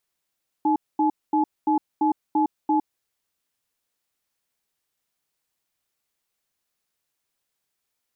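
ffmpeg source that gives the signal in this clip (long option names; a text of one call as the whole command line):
ffmpeg -f lavfi -i "aevalsrc='0.1*(sin(2*PI*308*t)+sin(2*PI*854*t))*clip(min(mod(t,0.34),0.11-mod(t,0.34))/0.005,0,1)':duration=2.37:sample_rate=44100" out.wav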